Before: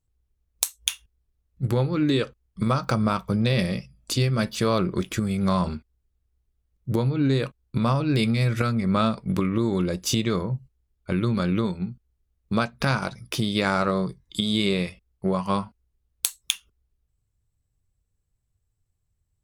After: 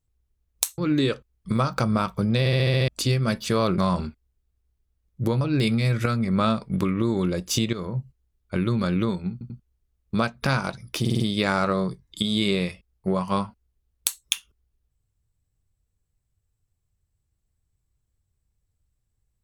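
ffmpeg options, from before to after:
-filter_complex "[0:a]asplit=18[s0][s1][s2][s3][s4][s5][s6][s7][s8][s9][s10][s11][s12][s13][s14][s15][s16][s17];[s0]atrim=end=0.782[s18];[s1]atrim=start=1.888:end=3.572[s19];[s2]atrim=start=3.498:end=3.572[s20];[s3]atrim=start=3.498:end=3.572[s21];[s4]atrim=start=3.498:end=3.572[s22];[s5]atrim=start=3.498:end=3.572[s23];[s6]atrim=start=3.498:end=3.572[s24];[s7]atrim=start=3.498:end=3.572[s25];[s8]atrim=start=3.988:end=4.892[s26];[s9]atrim=start=5.458:end=7.092[s27];[s10]atrim=start=7.968:end=10.29,asetpts=PTS-STARTPTS,afade=t=out:st=2.318:d=0.004:c=hsin:silence=0.237137[s28];[s11]atrim=start=10.29:end=11.972,asetpts=PTS-STARTPTS,afade=t=in:d=0.25:silence=0.237137[s29];[s12]atrim=start=11.878:end=11.972[s30];[s13]atrim=start=11.878:end=13.432[s31];[s14]atrim=start=13.378:end=13.432[s32];[s15]atrim=start=13.378:end=13.432[s33];[s16]atrim=start=13.378:end=13.432[s34];[s17]atrim=start=13.378[s35];[s18][s19]acrossfade=d=0.004:c1=hsin:c2=hsin[s36];[s36][s20]acrossfade=d=0.004:c1=hsin:c2=hsin[s37];[s37][s21]acrossfade=d=0.004:c1=hsin:c2=hsin[s38];[s38][s22]acrossfade=d=0.004:c1=hsin:c2=hsin[s39];[s39][s23]acrossfade=d=0.004:c1=hsin:c2=hsin[s40];[s40][s24]acrossfade=d=0.004:c1=hsin:c2=hsin[s41];[s41][s25]acrossfade=d=0.004:c1=hsin:c2=hsin[s42];[s42][s26]acrossfade=d=0.004:c1=hsin:c2=hsin[s43];[s43][s27]acrossfade=d=0.004:c1=hsin:c2=hsin[s44];[s28][s29]concat=n=2:v=0:a=1[s45];[s44][s45]acrossfade=d=0.004:c1=hsin:c2=hsin[s46];[s46][s30]acrossfade=d=0.004:c1=hsin:c2=hsin[s47];[s47][s31]acrossfade=d=0.004:c1=hsin:c2=hsin[s48];[s48][s32]acrossfade=d=0.004:c1=hsin:c2=hsin[s49];[s49][s33]acrossfade=d=0.004:c1=hsin:c2=hsin[s50];[s50][s34]acrossfade=d=0.004:c1=hsin:c2=hsin[s51];[s51][s35]acrossfade=d=0.004:c1=hsin:c2=hsin"

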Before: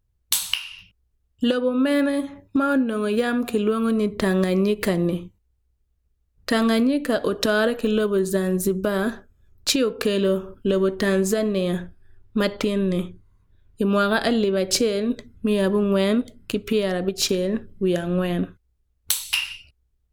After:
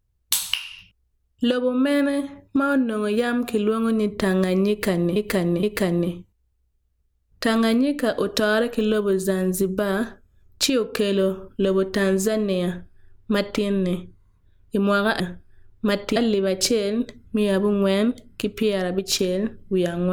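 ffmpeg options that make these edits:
-filter_complex "[0:a]asplit=5[s0][s1][s2][s3][s4];[s0]atrim=end=5.162[s5];[s1]atrim=start=4.688:end=5.162[s6];[s2]atrim=start=4.688:end=14.262[s7];[s3]atrim=start=11.718:end=12.682[s8];[s4]atrim=start=14.258[s9];[s5][s6]acrossfade=d=0.004:c1=hsin:c2=hsin[s10];[s10][s7]acrossfade=d=0.004:c1=hsin:c2=hsin[s11];[s11][s8]acrossfade=d=0.004:c1=hsin:c2=hsin[s12];[s12][s9]acrossfade=d=0.004:c1=hsin:c2=hsin"

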